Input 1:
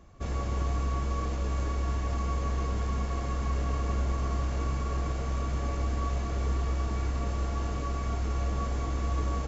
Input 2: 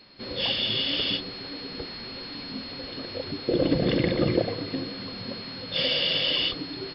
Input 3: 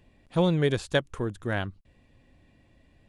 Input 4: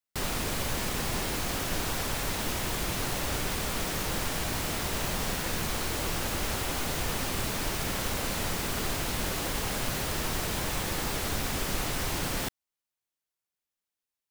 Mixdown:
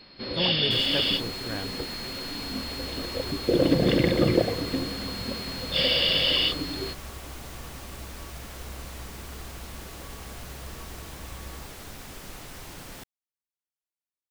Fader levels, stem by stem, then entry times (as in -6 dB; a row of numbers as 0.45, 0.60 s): -14.0, +2.0, -7.5, -11.0 dB; 2.20, 0.00, 0.00, 0.55 s